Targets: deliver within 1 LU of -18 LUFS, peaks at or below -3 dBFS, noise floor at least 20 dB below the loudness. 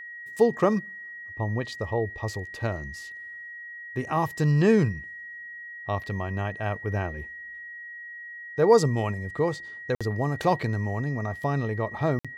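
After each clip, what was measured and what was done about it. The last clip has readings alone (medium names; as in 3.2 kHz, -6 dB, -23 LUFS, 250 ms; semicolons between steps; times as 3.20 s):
dropouts 2; longest dropout 56 ms; steady tone 1.9 kHz; tone level -38 dBFS; loudness -27.0 LUFS; peak level -7.0 dBFS; loudness target -18.0 LUFS
-> interpolate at 9.95/12.19 s, 56 ms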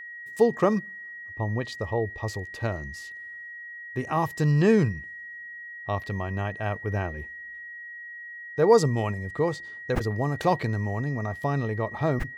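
dropouts 0; steady tone 1.9 kHz; tone level -38 dBFS
-> band-stop 1.9 kHz, Q 30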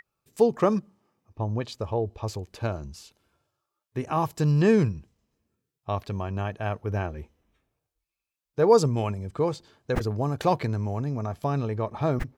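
steady tone not found; loudness -27.0 LUFS; peak level -7.0 dBFS; loudness target -18.0 LUFS
-> trim +9 dB; peak limiter -3 dBFS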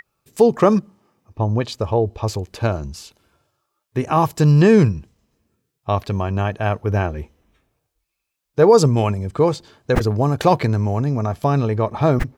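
loudness -18.5 LUFS; peak level -3.0 dBFS; noise floor -78 dBFS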